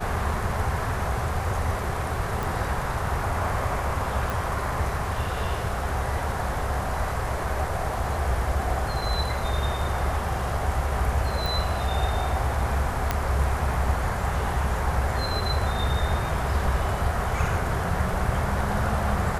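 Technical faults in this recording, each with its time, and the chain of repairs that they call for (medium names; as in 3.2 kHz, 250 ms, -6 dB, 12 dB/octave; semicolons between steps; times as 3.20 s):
2.43 s: pop
4.30 s: pop
11.46 s: pop
13.11 s: pop -9 dBFS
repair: de-click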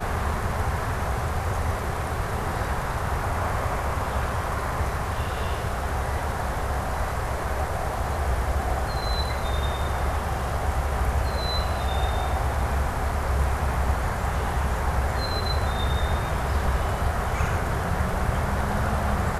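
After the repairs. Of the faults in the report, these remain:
nothing left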